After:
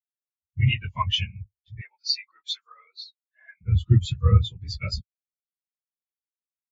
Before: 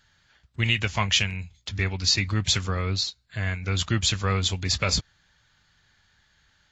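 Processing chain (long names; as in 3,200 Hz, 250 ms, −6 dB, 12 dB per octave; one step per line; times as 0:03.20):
random phases in long frames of 50 ms
0:01.81–0:03.61: Chebyshev band-pass filter 770–6,800 Hz, order 2
every bin expanded away from the loudest bin 2.5 to 1
level +2 dB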